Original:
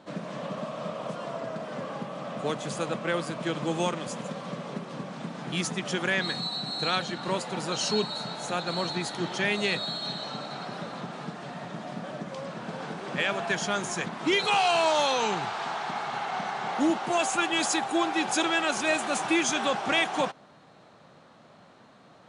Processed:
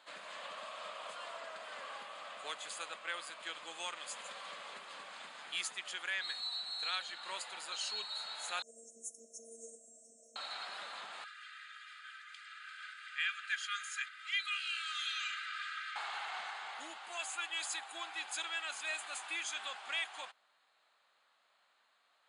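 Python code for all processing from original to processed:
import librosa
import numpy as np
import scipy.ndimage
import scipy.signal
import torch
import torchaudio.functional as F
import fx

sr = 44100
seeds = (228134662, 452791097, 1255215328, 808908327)

y = fx.chain(x, sr, fx.robotise(hz=229.0),
    fx.brickwall_bandstop(low_hz=660.0, high_hz=5300.0), at=(8.62, 10.36))
y = fx.chain(y, sr, fx.brickwall_highpass(low_hz=1200.0),
    fx.high_shelf(hz=3200.0, db=-10.5),
    fx.comb(ms=2.5, depth=0.63), at=(11.24, 15.96))
y = fx.rider(y, sr, range_db=5, speed_s=0.5)
y = scipy.signal.sosfilt(scipy.signal.bessel(2, 1800.0, 'highpass', norm='mag', fs=sr, output='sos'), y)
y = fx.peak_eq(y, sr, hz=5700.0, db=-14.0, octaves=0.22)
y = y * librosa.db_to_amplitude(-4.5)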